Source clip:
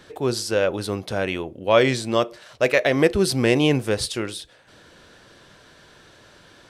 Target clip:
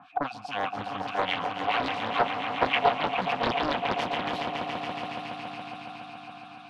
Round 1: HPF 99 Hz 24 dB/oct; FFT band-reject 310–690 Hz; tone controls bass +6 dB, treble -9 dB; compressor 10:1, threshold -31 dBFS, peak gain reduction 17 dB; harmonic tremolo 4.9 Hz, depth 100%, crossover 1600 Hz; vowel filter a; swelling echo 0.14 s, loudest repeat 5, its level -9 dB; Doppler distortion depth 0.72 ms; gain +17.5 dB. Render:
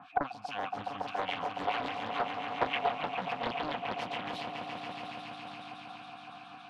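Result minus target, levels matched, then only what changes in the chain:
compressor: peak gain reduction +8 dB
change: compressor 10:1, threshold -22 dBFS, peak gain reduction 8.5 dB

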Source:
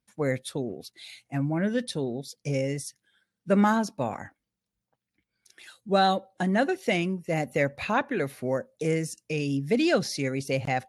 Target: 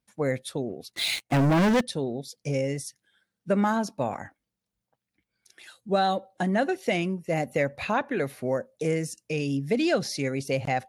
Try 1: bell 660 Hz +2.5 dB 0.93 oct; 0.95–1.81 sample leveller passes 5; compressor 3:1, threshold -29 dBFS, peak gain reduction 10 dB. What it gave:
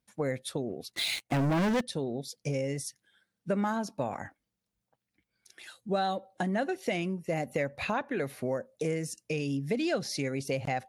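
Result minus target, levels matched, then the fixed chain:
compressor: peak gain reduction +6 dB
bell 660 Hz +2.5 dB 0.93 oct; 0.95–1.81 sample leveller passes 5; compressor 3:1, threshold -20 dBFS, peak gain reduction 4 dB

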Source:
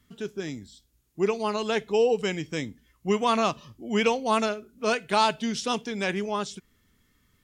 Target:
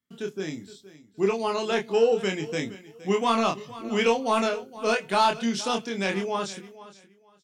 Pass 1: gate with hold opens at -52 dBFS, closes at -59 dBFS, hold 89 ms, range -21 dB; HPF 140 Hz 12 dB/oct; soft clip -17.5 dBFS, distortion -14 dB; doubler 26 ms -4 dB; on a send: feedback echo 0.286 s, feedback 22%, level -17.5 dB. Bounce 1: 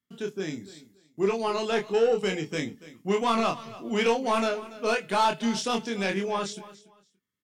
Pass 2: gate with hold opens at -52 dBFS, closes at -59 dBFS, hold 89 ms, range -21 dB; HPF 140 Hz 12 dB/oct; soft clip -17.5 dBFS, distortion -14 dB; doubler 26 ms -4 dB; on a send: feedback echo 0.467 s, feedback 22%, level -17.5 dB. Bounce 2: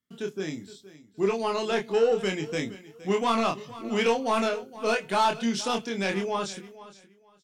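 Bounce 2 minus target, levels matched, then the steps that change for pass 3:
soft clip: distortion +9 dB
change: soft clip -11 dBFS, distortion -23 dB

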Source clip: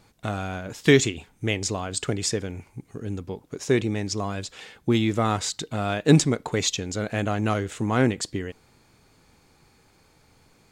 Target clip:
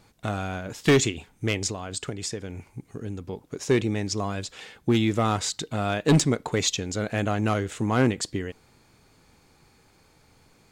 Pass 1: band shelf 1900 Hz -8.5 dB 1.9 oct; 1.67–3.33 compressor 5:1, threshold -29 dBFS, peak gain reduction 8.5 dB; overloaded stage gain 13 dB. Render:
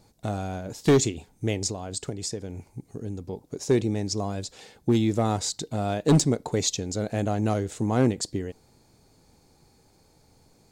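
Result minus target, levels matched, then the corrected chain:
2000 Hz band -7.5 dB
1.67–3.33 compressor 5:1, threshold -29 dBFS, peak gain reduction 8.5 dB; overloaded stage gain 13 dB

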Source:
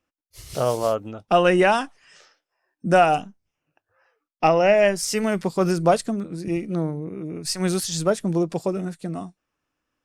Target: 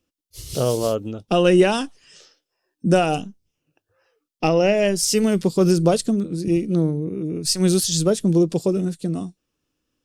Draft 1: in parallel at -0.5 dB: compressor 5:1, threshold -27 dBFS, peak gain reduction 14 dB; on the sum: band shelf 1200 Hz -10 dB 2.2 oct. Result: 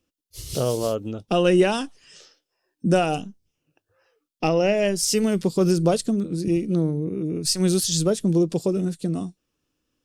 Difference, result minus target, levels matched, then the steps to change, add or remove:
compressor: peak gain reduction +9 dB
change: compressor 5:1, threshold -15.5 dBFS, peak gain reduction 5 dB

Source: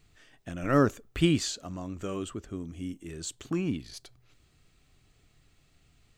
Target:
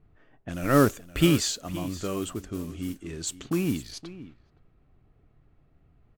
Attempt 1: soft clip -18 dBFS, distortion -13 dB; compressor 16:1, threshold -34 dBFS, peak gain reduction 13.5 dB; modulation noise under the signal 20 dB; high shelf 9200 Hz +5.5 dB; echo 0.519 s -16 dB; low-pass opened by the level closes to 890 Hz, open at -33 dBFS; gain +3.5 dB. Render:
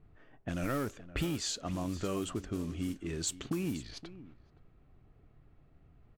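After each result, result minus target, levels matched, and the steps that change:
compressor: peak gain reduction +13.5 dB; soft clip: distortion +17 dB
remove: compressor 16:1, threshold -34 dBFS, peak gain reduction 13.5 dB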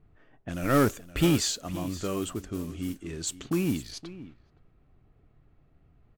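soft clip: distortion +17 dB
change: soft clip -7 dBFS, distortion -30 dB

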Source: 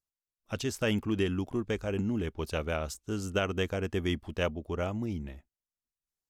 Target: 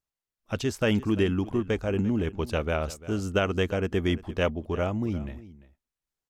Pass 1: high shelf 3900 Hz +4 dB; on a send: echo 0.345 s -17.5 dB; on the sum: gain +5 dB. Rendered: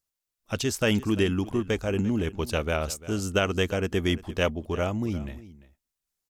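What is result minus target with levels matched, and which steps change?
8000 Hz band +7.5 dB
change: high shelf 3900 Hz -6.5 dB

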